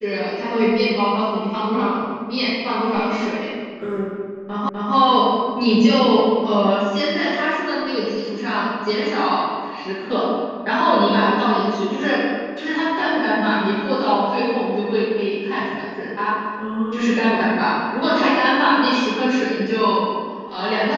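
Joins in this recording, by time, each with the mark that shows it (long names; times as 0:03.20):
0:04.69: the same again, the last 0.25 s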